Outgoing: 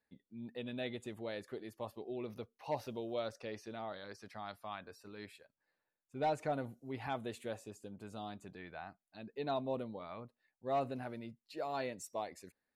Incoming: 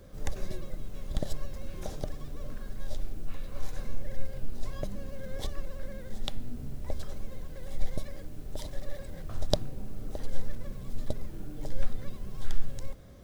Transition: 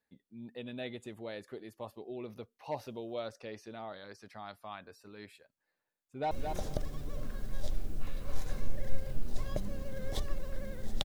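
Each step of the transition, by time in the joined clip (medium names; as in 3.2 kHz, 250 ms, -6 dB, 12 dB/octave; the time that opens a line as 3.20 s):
outgoing
6.03–6.31 s: echo throw 220 ms, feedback 15%, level -5.5 dB
6.31 s: go over to incoming from 1.58 s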